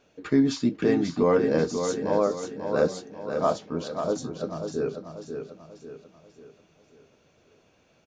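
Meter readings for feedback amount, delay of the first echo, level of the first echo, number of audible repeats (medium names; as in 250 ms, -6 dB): 43%, 540 ms, -7.0 dB, 4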